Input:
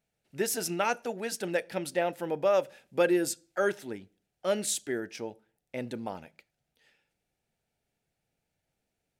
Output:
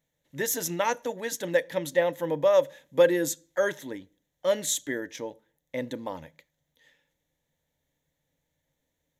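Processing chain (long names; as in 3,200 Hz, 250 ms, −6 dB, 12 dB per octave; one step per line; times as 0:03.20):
EQ curve with evenly spaced ripples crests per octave 1.1, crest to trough 11 dB
level +1.5 dB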